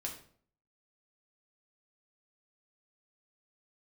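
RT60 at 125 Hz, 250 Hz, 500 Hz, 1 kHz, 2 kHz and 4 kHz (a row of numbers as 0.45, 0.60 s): 0.65, 0.65, 0.60, 0.50, 0.45, 0.40 s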